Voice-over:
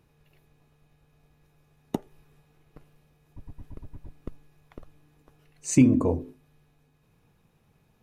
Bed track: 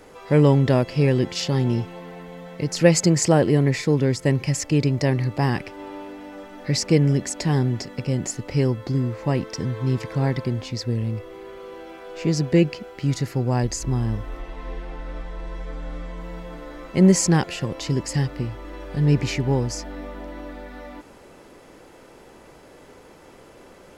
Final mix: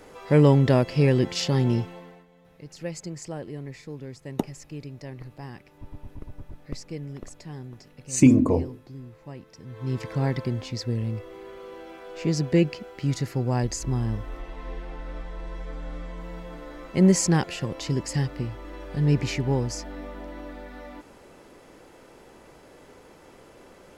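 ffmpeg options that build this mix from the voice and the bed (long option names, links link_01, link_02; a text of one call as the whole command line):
ffmpeg -i stem1.wav -i stem2.wav -filter_complex "[0:a]adelay=2450,volume=2.5dB[link_01];[1:a]volume=14.5dB,afade=type=out:start_time=1.76:duration=0.5:silence=0.133352,afade=type=in:start_time=9.64:duration=0.42:silence=0.16788[link_02];[link_01][link_02]amix=inputs=2:normalize=0" out.wav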